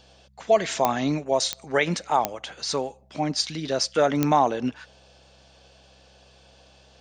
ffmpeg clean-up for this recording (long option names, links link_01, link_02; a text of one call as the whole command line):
ffmpeg -i in.wav -af "adeclick=threshold=4,bandreject=frequency=65.7:width_type=h:width=4,bandreject=frequency=131.4:width_type=h:width=4,bandreject=frequency=197.1:width_type=h:width=4" out.wav